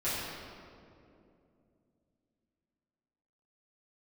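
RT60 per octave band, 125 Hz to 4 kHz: 3.6, 3.7, 3.0, 2.2, 1.8, 1.4 seconds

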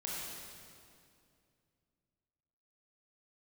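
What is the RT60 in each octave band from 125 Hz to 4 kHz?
3.2, 3.0, 2.6, 2.3, 2.1, 2.0 seconds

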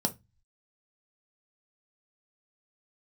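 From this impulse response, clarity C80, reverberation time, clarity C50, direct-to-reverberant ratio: 30.0 dB, 0.20 s, 19.0 dB, 5.0 dB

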